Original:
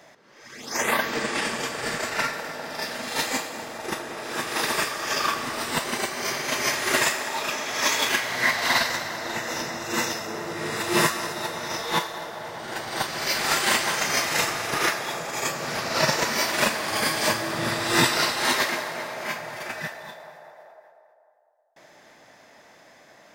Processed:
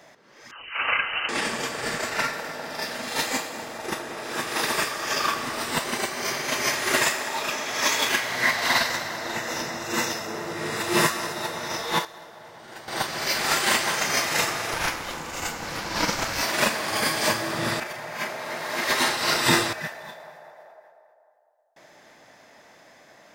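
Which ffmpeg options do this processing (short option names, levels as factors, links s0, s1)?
-filter_complex "[0:a]asettb=1/sr,asplit=3[s0][s1][s2];[s0]atrim=end=0.514[s3];[s1]atrim=start=0.51:end=1.29,asetpts=PTS-STARTPTS,afade=t=in:d=0.004:c=qsin,afade=t=out:st=0.776:d=0.004:c=qsin,lowpass=f=2700:t=q:w=0.5098,lowpass=f=2700:t=q:w=0.6013,lowpass=f=2700:t=q:w=0.9,lowpass=f=2700:t=q:w=2.563,afreqshift=-3200[s4];[s2]atrim=start=1.286[s5];[s3][s4]acrossfade=d=0.004:c1=hsin:c2=qsin[s6];[s6][s5]acrossfade=d=0.004:c1=qsin:c2=hsin,asettb=1/sr,asplit=3[s7][s8][s9];[s7]atrim=end=14.734[s10];[s8]atrim=start=14.73:end=16.43,asetpts=PTS-STARTPTS,afade=t=in:d=0.004:c=qsin,afade=t=out:st=1.696:d=0.004:c=qsin,aeval=exprs='val(0)*sin(2*PI*330*n/s)':c=same[s11];[s9]atrim=start=16.426[s12];[s10][s11]acrossfade=d=0.004:c1=hsin:c2=qsin[s13];[s13][s12]acrossfade=d=0.004:c1=qsin:c2=hsin,asplit=5[s14][s15][s16][s17][s18];[s14]atrim=end=12.052[s19];[s15]atrim=start=12.048:end=12.882,asetpts=PTS-STARTPTS,volume=0.335[s20];[s16]atrim=start=12.878:end=17.802[s21];[s17]atrim=start=17.798:end=19.732,asetpts=PTS-STARTPTS,areverse[s22];[s18]atrim=start=19.728[s23];[s19][s20]acrossfade=d=0.004:c1=hsin:c2=hsin[s24];[s24][s21]acrossfade=d=0.004:c1=hsin:c2=hsin[s25];[s25][s22]acrossfade=d=0.004:c1=hsin:c2=hsin[s26];[s26][s23]acrossfade=d=0.004:c1=hsin:c2=hsin"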